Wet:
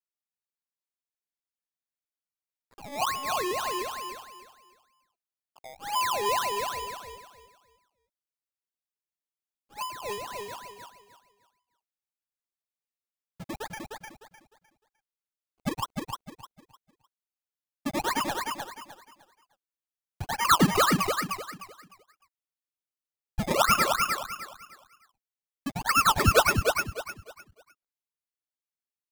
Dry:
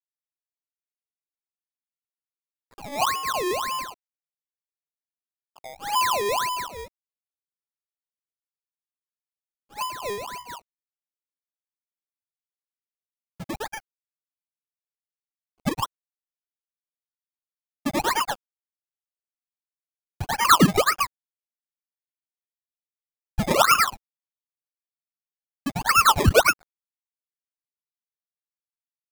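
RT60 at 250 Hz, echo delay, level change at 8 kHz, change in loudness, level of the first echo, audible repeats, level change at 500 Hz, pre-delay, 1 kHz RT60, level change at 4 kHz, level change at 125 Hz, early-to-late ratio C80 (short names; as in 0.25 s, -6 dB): none, 0.304 s, -3.5 dB, -5.0 dB, -4.0 dB, 3, -3.5 dB, none, none, -3.5 dB, -3.5 dB, none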